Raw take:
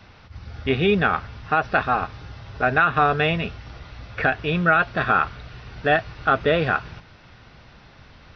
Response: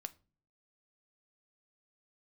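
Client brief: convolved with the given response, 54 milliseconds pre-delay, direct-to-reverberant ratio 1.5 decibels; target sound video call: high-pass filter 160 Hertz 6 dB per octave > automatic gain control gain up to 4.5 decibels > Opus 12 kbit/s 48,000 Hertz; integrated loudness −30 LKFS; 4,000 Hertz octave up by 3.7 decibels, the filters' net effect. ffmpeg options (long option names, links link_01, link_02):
-filter_complex "[0:a]equalizer=frequency=4000:width_type=o:gain=5,asplit=2[link_01][link_02];[1:a]atrim=start_sample=2205,adelay=54[link_03];[link_02][link_03]afir=irnorm=-1:irlink=0,volume=2dB[link_04];[link_01][link_04]amix=inputs=2:normalize=0,highpass=frequency=160:poles=1,dynaudnorm=maxgain=4.5dB,volume=-10dB" -ar 48000 -c:a libopus -b:a 12k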